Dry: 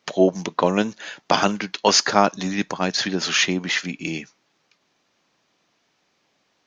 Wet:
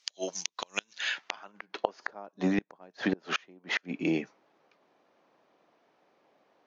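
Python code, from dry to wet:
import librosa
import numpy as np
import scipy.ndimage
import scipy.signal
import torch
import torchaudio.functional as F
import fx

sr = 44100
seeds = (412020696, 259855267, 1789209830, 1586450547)

y = fx.filter_sweep_bandpass(x, sr, from_hz=6400.0, to_hz=570.0, start_s=0.71, end_s=1.75, q=0.96)
y = fx.gate_flip(y, sr, shuts_db=-21.0, range_db=-32)
y = y * librosa.db_to_amplitude(6.0)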